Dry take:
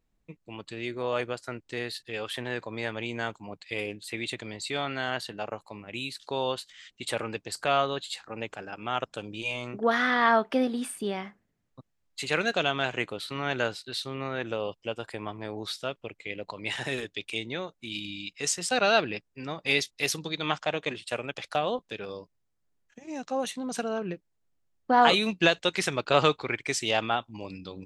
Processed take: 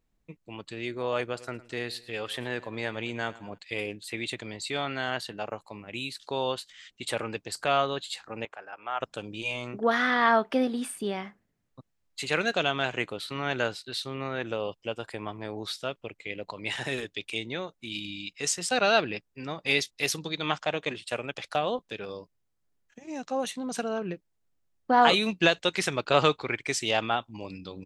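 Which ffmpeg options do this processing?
-filter_complex "[0:a]asplit=3[a][b][c];[a]afade=t=out:st=1.33:d=0.02[d];[b]aecho=1:1:109|218|327:0.112|0.0482|0.0207,afade=t=in:st=1.33:d=0.02,afade=t=out:st=3.57:d=0.02[e];[c]afade=t=in:st=3.57:d=0.02[f];[d][e][f]amix=inputs=3:normalize=0,asettb=1/sr,asplit=3[g][h][i];[g]atrim=end=8.454[j];[h]atrim=start=8.45:end=9.01,asetpts=PTS-STARTPTS,afade=t=in:d=0.004:c=qsin,afade=t=out:st=0.556:d=0.004:c=qsin,acrossover=split=530 2200:gain=0.0891 1 0.2[k][l][m];[k][l][m]amix=inputs=3:normalize=0[n];[i]atrim=start=9.006[o];[j][n]acrossfade=d=0.004:c1=hsin:c2=qsin[p];[p][o]acrossfade=d=0.004:c1=qsin:c2=hsin"

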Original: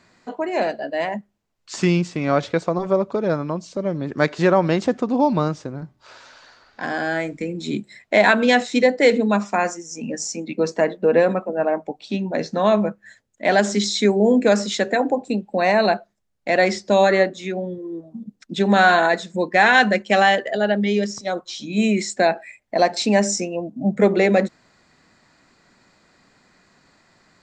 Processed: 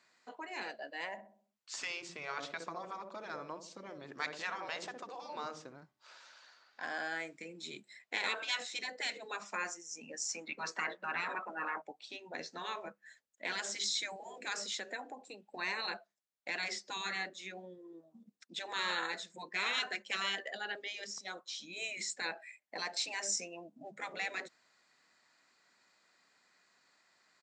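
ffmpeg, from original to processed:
-filter_complex "[0:a]asplit=3[a][b][c];[a]afade=t=out:st=1.13:d=0.02[d];[b]asplit=2[e][f];[f]adelay=64,lowpass=f=950:p=1,volume=-9dB,asplit=2[g][h];[h]adelay=64,lowpass=f=950:p=1,volume=0.52,asplit=2[i][j];[j]adelay=64,lowpass=f=950:p=1,volume=0.52,asplit=2[k][l];[l]adelay=64,lowpass=f=950:p=1,volume=0.52,asplit=2[m][n];[n]adelay=64,lowpass=f=950:p=1,volume=0.52,asplit=2[o][p];[p]adelay=64,lowpass=f=950:p=1,volume=0.52[q];[e][g][i][k][m][o][q]amix=inputs=7:normalize=0,afade=t=in:st=1.13:d=0.02,afade=t=out:st=5.75:d=0.02[r];[c]afade=t=in:st=5.75:d=0.02[s];[d][r][s]amix=inputs=3:normalize=0,asettb=1/sr,asplit=3[t][u][v];[t]atrim=end=10.294[w];[u]atrim=start=10.29:end=11.82,asetpts=PTS-STARTPTS,afade=t=in:d=0.004:c=qsin,afade=t=out:st=1.526:d=0.004:c=qsin,equalizer=f=1.3k:t=o:w=1.8:g=14[x];[v]atrim=start=11.816[y];[w][x]acrossfade=d=0.004:c1=hsin:c2=qsin[z];[z][y]acrossfade=d=0.004:c1=qsin:c2=hsin,asettb=1/sr,asplit=3[aa][ab][ac];[aa]atrim=end=14.694[ad];[ab]atrim=start=14.69:end=15.54,asetpts=PTS-STARTPTS,afade=t=in:d=0.004:c=qsin,afade=t=out:st=0.846:d=0.004:c=qsin,acompressor=threshold=-25dB:ratio=2:attack=3.2:release=140:knee=1:detection=peak[ae];[ac]atrim=start=15.536[af];[ad][ae]acrossfade=d=0.004:c1=hsin:c2=qsin[ag];[ag][af]acrossfade=d=0.004:c1=qsin:c2=hsin,afftfilt=real='re*lt(hypot(re,im),0.501)':imag='im*lt(hypot(re,im),0.501)':win_size=1024:overlap=0.75,lowpass=f=1.2k:p=1,aderivative,volume=5.5dB"

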